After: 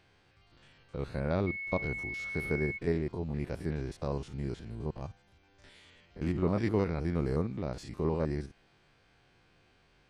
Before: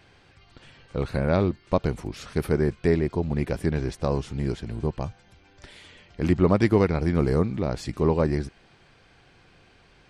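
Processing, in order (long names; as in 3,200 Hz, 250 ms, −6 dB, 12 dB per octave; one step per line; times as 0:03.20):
spectrum averaged block by block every 50 ms
0:01.46–0:02.77: steady tone 2,200 Hz −28 dBFS
level −8 dB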